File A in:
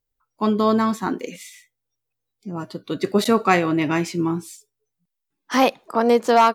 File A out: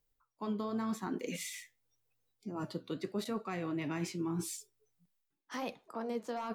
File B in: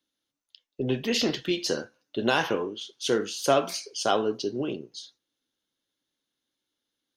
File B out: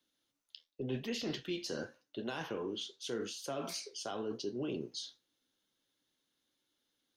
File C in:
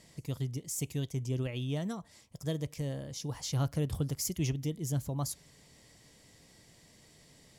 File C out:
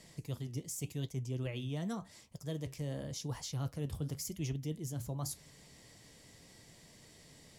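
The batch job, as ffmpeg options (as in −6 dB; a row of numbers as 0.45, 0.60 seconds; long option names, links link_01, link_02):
-filter_complex "[0:a]areverse,acompressor=threshold=-37dB:ratio=4,areverse,flanger=delay=4.4:depth=9.1:regen=-70:speed=0.88:shape=triangular,acrossover=split=310[link_01][link_02];[link_02]acompressor=threshold=-43dB:ratio=6[link_03];[link_01][link_03]amix=inputs=2:normalize=0,volume=5.5dB"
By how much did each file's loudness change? −18.5, −12.5, −4.5 LU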